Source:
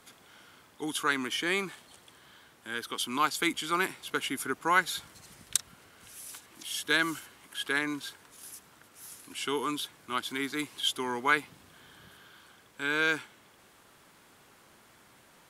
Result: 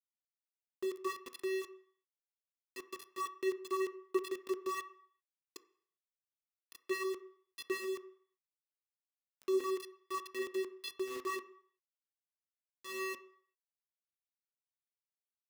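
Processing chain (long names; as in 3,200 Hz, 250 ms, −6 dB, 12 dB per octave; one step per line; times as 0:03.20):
spectral dynamics exaggerated over time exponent 1.5
in parallel at +0.5 dB: downward compressor 16 to 1, threshold −39 dBFS, peak gain reduction 19.5 dB
on the sum: asymmetric clip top −22.5 dBFS, bottom −10 dBFS
speech leveller 0.5 s
channel vocoder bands 8, square 380 Hz
centre clipping without the shift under −36 dBFS
on a send at −10 dB: convolution reverb RT60 0.60 s, pre-delay 3 ms
on the sum: level −3.5 dB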